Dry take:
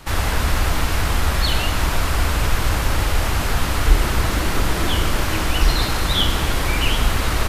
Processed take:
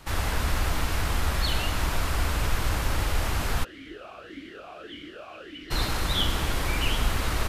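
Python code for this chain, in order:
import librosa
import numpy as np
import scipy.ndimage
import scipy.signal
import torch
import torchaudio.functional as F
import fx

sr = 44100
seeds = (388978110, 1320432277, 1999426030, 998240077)

y = fx.vowel_sweep(x, sr, vowels='a-i', hz=1.7, at=(3.63, 5.7), fade=0.02)
y = y * 10.0 ** (-7.0 / 20.0)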